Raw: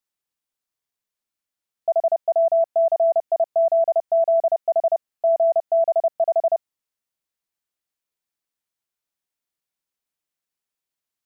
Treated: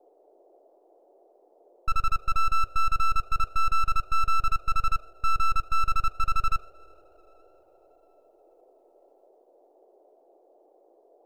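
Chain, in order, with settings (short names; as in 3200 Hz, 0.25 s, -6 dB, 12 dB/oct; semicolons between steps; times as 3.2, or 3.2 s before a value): two-slope reverb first 0.33 s, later 4.3 s, from -19 dB, DRR 15.5 dB; full-wave rectifier; band noise 340–730 Hz -57 dBFS; gain -2.5 dB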